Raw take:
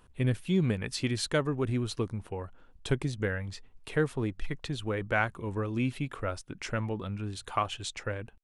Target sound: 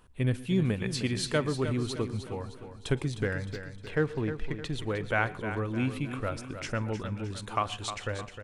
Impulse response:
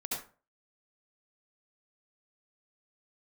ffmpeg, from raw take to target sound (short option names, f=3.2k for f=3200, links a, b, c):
-filter_complex "[0:a]asettb=1/sr,asplit=3[a][b][c];[a]atrim=end=3.254[d];[b]atrim=start=3.25:end=4.62,asetpts=PTS-STARTPTS,afade=t=in:d=0.004:c=qsin,afade=t=out:st=1.366:d=0.004:c=qsin,adynamicsmooth=sensitivity=7.5:basefreq=3.9k[e];[c]atrim=start=4.616[f];[d][e]acrossfade=d=0.004:c1=hsin:c2=qsin[g];[g][f]acrossfade=d=0.004:c1=qsin:c2=hsin,aecho=1:1:308|616|924|1232|1540:0.316|0.142|0.064|0.0288|0.013,asplit=2[h][i];[1:a]atrim=start_sample=2205,atrim=end_sample=4410,adelay=46[j];[i][j]afir=irnorm=-1:irlink=0,volume=-19dB[k];[h][k]amix=inputs=2:normalize=0"